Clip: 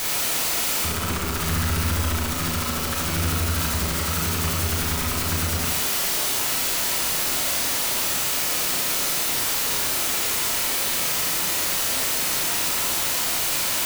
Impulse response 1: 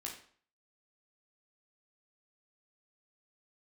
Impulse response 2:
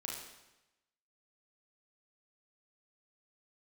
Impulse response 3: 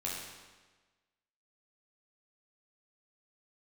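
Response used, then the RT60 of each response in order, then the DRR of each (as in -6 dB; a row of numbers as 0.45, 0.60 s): 2; 0.50, 0.95, 1.3 s; -2.5, -2.5, -5.0 dB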